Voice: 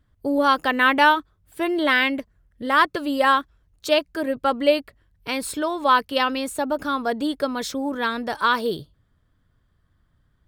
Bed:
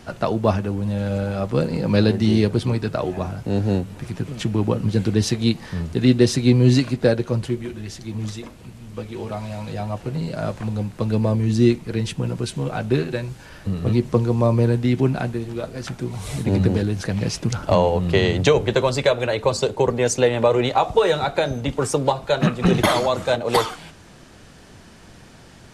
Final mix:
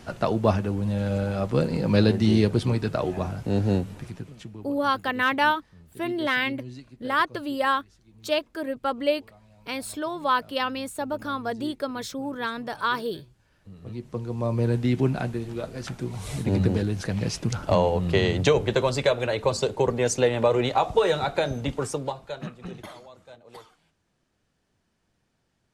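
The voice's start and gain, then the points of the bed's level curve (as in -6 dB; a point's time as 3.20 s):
4.40 s, -5.5 dB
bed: 3.90 s -2.5 dB
4.77 s -25.5 dB
13.44 s -25.5 dB
14.76 s -4 dB
21.67 s -4 dB
23.06 s -27.5 dB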